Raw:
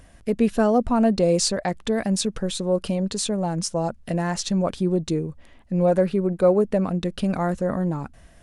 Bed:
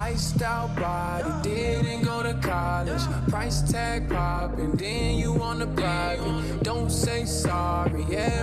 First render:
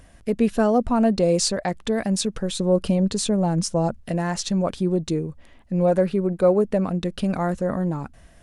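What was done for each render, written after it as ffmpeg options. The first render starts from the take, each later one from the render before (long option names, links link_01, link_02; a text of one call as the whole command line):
ffmpeg -i in.wav -filter_complex "[0:a]asettb=1/sr,asplit=3[link_01][link_02][link_03];[link_01]atrim=end=2.594[link_04];[link_02]atrim=start=2.59:end=4,asetpts=PTS-STARTPTS,afade=type=in:duration=0.004:curve=qsin,afade=type=out:start_time=1.406:duration=0.004:curve=qsin,lowshelf=frequency=430:gain=5.5[link_05];[link_03]atrim=start=3.996[link_06];[link_04][link_05]acrossfade=duration=0.004:curve1=hsin:curve2=qsin[link_07];[link_07][link_06]acrossfade=duration=0.004:curve1=qsin:curve2=hsin" out.wav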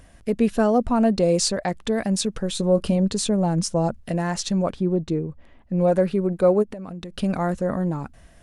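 ffmpeg -i in.wav -filter_complex "[0:a]asettb=1/sr,asplit=3[link_01][link_02][link_03];[link_01]atrim=end=2.504[link_04];[link_02]atrim=start=2.5:end=2.96,asetpts=PTS-STARTPTS,afade=type=in:duration=0.004:curve=qsin,afade=type=out:start_time=0.456:duration=0.004:curve=qsin,asplit=2[link_05][link_06];[link_06]adelay=18,volume=-12dB[link_07];[link_05][link_07]amix=inputs=2:normalize=0,atrim=end_sample=20286[link_08];[link_03]atrim=start=2.956[link_09];[link_04][link_08]acrossfade=duration=0.004:curve1=hsin:curve2=qsin[link_10];[link_10][link_09]acrossfade=duration=0.004:curve1=qsin:curve2=hsin,asplit=3[link_11][link_12][link_13];[link_11]afade=type=out:start_time=4.71:duration=0.02[link_14];[link_12]lowpass=frequency=1900:poles=1,afade=type=in:start_time=4.71:duration=0.02,afade=type=out:start_time=5.78:duration=0.02[link_15];[link_13]afade=type=in:start_time=5.78:duration=0.02[link_16];[link_14][link_15][link_16]amix=inputs=3:normalize=0,asplit=3[link_17][link_18][link_19];[link_17]afade=type=out:start_time=6.62:duration=0.02[link_20];[link_18]acompressor=threshold=-30dB:ratio=20:attack=3.2:release=140:knee=1:detection=peak,afade=type=in:start_time=6.62:duration=0.02,afade=type=out:start_time=7.16:duration=0.02[link_21];[link_19]afade=type=in:start_time=7.16:duration=0.02[link_22];[link_20][link_21][link_22]amix=inputs=3:normalize=0" out.wav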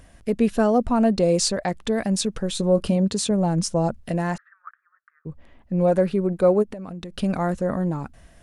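ffmpeg -i in.wav -filter_complex "[0:a]asettb=1/sr,asplit=3[link_01][link_02][link_03];[link_01]atrim=end=2.884[link_04];[link_02]atrim=start=2.88:end=3.31,asetpts=PTS-STARTPTS,afade=type=in:duration=0.004:curve=qsin,afade=type=out:start_time=0.426:duration=0.004:curve=qsin,highpass=69[link_05];[link_03]atrim=start=3.306[link_06];[link_04][link_05]acrossfade=duration=0.004:curve1=hsin:curve2=qsin[link_07];[link_07][link_06]acrossfade=duration=0.004:curve1=qsin:curve2=hsin,asplit=3[link_08][link_09][link_10];[link_08]afade=type=out:start_time=4.36:duration=0.02[link_11];[link_09]asuperpass=centerf=1500:order=8:qfactor=2.4,afade=type=in:start_time=4.36:duration=0.02,afade=type=out:start_time=5.25:duration=0.02[link_12];[link_10]afade=type=in:start_time=5.25:duration=0.02[link_13];[link_11][link_12][link_13]amix=inputs=3:normalize=0" out.wav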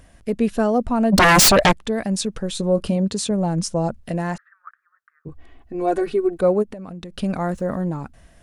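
ffmpeg -i in.wav -filter_complex "[0:a]asplit=3[link_01][link_02][link_03];[link_01]afade=type=out:start_time=1.12:duration=0.02[link_04];[link_02]aeval=exprs='0.355*sin(PI/2*5.01*val(0)/0.355)':channel_layout=same,afade=type=in:start_time=1.12:duration=0.02,afade=type=out:start_time=1.71:duration=0.02[link_05];[link_03]afade=type=in:start_time=1.71:duration=0.02[link_06];[link_04][link_05][link_06]amix=inputs=3:normalize=0,asettb=1/sr,asplit=3[link_07][link_08][link_09];[link_07]atrim=end=5.284[link_10];[link_08]atrim=start=5.28:end=6.41,asetpts=PTS-STARTPTS,afade=type=in:duration=0.004:curve=qsin,afade=type=out:start_time=1.126:duration=0.004:curve=qsin,aecho=1:1:2.7:0.97,atrim=end_sample=49833[link_11];[link_09]atrim=start=6.406[link_12];[link_10][link_11]acrossfade=duration=0.004:curve1=hsin:curve2=qsin[link_13];[link_13][link_12]acrossfade=duration=0.004:curve1=qsin:curve2=hsin,asettb=1/sr,asplit=3[link_14][link_15][link_16];[link_14]atrim=end=7.404[link_17];[link_15]atrim=start=7.4:end=7.81,asetpts=PTS-STARTPTS,afade=type=in:duration=0.004:curve=qsin,afade=type=out:start_time=0.406:duration=0.004:curve=qsin,aeval=exprs='val(0)*gte(abs(val(0)),0.00266)':channel_layout=same[link_18];[link_16]atrim=start=7.806[link_19];[link_17][link_18]acrossfade=duration=0.004:curve1=hsin:curve2=qsin[link_20];[link_20][link_19]acrossfade=duration=0.004:curve1=qsin:curve2=hsin" out.wav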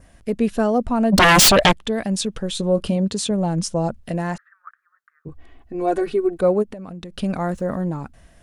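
ffmpeg -i in.wav -af "adynamicequalizer=threshold=0.0112:dfrequency=3200:dqfactor=3:tfrequency=3200:tqfactor=3:attack=5:release=100:ratio=0.375:range=3:mode=boostabove:tftype=bell" out.wav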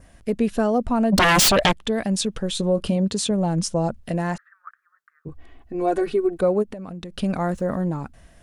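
ffmpeg -i in.wav -af "acompressor=threshold=-16dB:ratio=2.5" out.wav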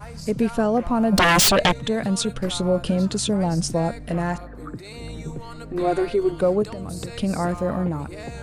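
ffmpeg -i in.wav -i bed.wav -filter_complex "[1:a]volume=-10dB[link_01];[0:a][link_01]amix=inputs=2:normalize=0" out.wav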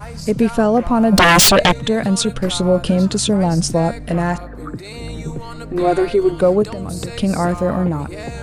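ffmpeg -i in.wav -af "volume=6dB,alimiter=limit=-3dB:level=0:latency=1" out.wav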